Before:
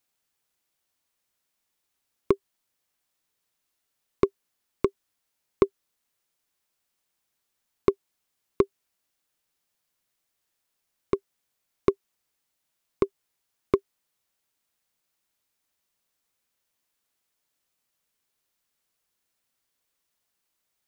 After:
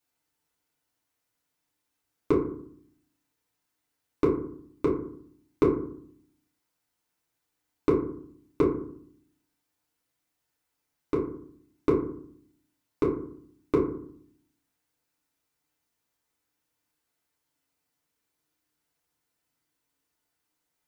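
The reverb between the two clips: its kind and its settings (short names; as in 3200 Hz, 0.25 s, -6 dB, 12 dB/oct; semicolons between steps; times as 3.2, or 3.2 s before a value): FDN reverb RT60 0.59 s, low-frequency decay 1.5×, high-frequency decay 0.4×, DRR -6 dB; gain -6.5 dB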